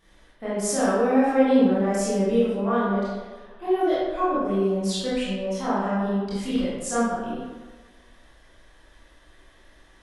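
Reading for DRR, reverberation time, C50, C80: -10.5 dB, 1.4 s, -2.5 dB, 0.5 dB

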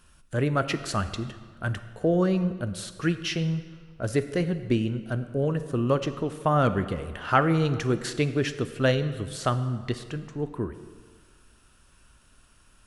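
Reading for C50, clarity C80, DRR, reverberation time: 12.0 dB, 13.0 dB, 10.5 dB, 1.7 s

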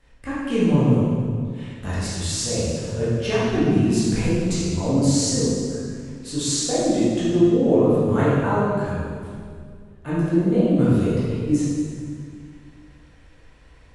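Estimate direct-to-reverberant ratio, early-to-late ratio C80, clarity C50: -11.0 dB, -0.5 dB, -3.5 dB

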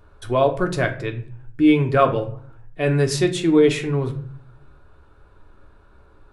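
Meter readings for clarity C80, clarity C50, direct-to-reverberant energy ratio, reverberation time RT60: 16.0 dB, 12.5 dB, 3.5 dB, 0.50 s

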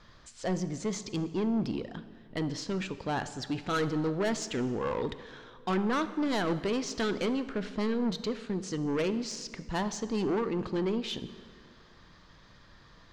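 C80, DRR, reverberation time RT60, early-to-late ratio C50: 14.5 dB, 12.0 dB, 2.1 s, 13.5 dB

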